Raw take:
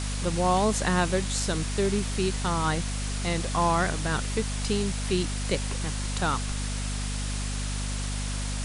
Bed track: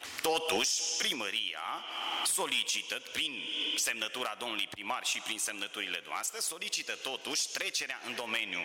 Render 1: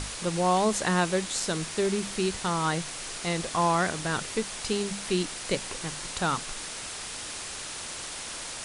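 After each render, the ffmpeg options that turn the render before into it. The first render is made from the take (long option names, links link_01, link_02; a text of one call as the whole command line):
ffmpeg -i in.wav -af "bandreject=frequency=50:width_type=h:width=6,bandreject=frequency=100:width_type=h:width=6,bandreject=frequency=150:width_type=h:width=6,bandreject=frequency=200:width_type=h:width=6,bandreject=frequency=250:width_type=h:width=6" out.wav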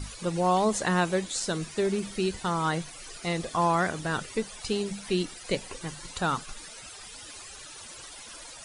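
ffmpeg -i in.wav -af "afftdn=noise_reduction=15:noise_floor=-38" out.wav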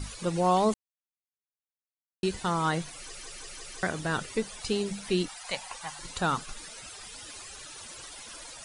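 ffmpeg -i in.wav -filter_complex "[0:a]asettb=1/sr,asplit=3[link_01][link_02][link_03];[link_01]atrim=end=5.284[link_04];[link_02]atrim=start=5.28:end=5.99,asetpts=PTS-STARTPTS,afade=type=in:duration=0.004:curve=qsin,afade=type=out:start_time=0.706:duration=0.004:curve=qsin,lowshelf=frequency=560:width_type=q:width=3:gain=-12[link_05];[link_03]atrim=start=5.986[link_06];[link_04][link_05]acrossfade=duration=0.004:curve1=hsin:curve2=qsin[link_07];[link_07][link_06]acrossfade=duration=0.004:curve1=qsin:curve2=hsin,asplit=8[link_08][link_09][link_10][link_11][link_12][link_13][link_14][link_15];[link_08]atrim=end=0.74,asetpts=PTS-STARTPTS,afade=type=out:start_time=0.736:duration=0.004:curve=hsin[link_16];[link_09]atrim=start=0.74:end=2.23,asetpts=PTS-STARTPTS,volume=0[link_17];[link_10]atrim=start=2.23:end=3.152,asetpts=PTS-STARTPTS,afade=type=in:duration=0.004:curve=hsin[link_18];[link_11]atrim=start=2.978:end=3.152[link_19];[link_12]atrim=start=2.978:end=3.152[link_20];[link_13]atrim=start=2.978:end=3.152[link_21];[link_14]atrim=start=2.978:end=3.152[link_22];[link_15]atrim=start=3.828[link_23];[link_16][link_17][link_18]concat=n=3:v=0:a=1[link_24];[link_24][link_19]acrossfade=duration=0.004:curve1=hsin:curve2=hsin[link_25];[link_25][link_20]acrossfade=duration=0.004:curve1=hsin:curve2=hsin[link_26];[link_26][link_21]acrossfade=duration=0.004:curve1=hsin:curve2=hsin[link_27];[link_27][link_22]acrossfade=duration=0.004:curve1=hsin:curve2=hsin[link_28];[link_28][link_23]acrossfade=duration=0.004:curve1=hsin:curve2=hsin" out.wav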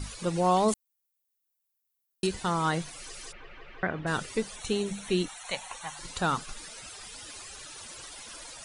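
ffmpeg -i in.wav -filter_complex "[0:a]asettb=1/sr,asplit=3[link_01][link_02][link_03];[link_01]atrim=end=0.684[link_04];[link_02]atrim=start=0.68:end=2.27,asetpts=PTS-STARTPTS,afade=type=in:duration=0.004:curve=qsin,afade=type=out:start_time=1.586:duration=0.004:curve=qsin,aemphasis=mode=production:type=50fm[link_05];[link_03]atrim=start=2.266[link_06];[link_04][link_05]acrossfade=duration=0.004:curve1=hsin:curve2=qsin[link_07];[link_07][link_06]acrossfade=duration=0.004:curve1=qsin:curve2=hsin,asplit=3[link_08][link_09][link_10];[link_08]afade=type=out:start_time=3.31:duration=0.02[link_11];[link_09]lowpass=frequency=2600:width=0.5412,lowpass=frequency=2600:width=1.3066,afade=type=in:start_time=3.31:duration=0.02,afade=type=out:start_time=4.06:duration=0.02[link_12];[link_10]afade=type=in:start_time=4.06:duration=0.02[link_13];[link_11][link_12][link_13]amix=inputs=3:normalize=0,asettb=1/sr,asplit=3[link_14][link_15][link_16];[link_14]atrim=end=4.564[link_17];[link_15]atrim=start=4.56:end=5.97,asetpts=PTS-STARTPTS,afade=type=in:duration=0.004:curve=qsin,afade=type=out:start_time=1.406:duration=0.004:curve=qsin,asuperstop=centerf=4900:order=4:qfactor=5.1[link_18];[link_16]atrim=start=5.966[link_19];[link_17][link_18]acrossfade=duration=0.004:curve1=hsin:curve2=qsin[link_20];[link_20][link_19]acrossfade=duration=0.004:curve1=qsin:curve2=hsin" out.wav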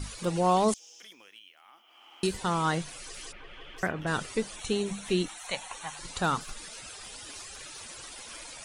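ffmpeg -i in.wav -i bed.wav -filter_complex "[1:a]volume=-19dB[link_01];[0:a][link_01]amix=inputs=2:normalize=0" out.wav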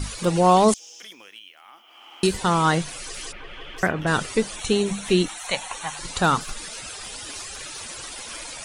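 ffmpeg -i in.wav -af "volume=8dB" out.wav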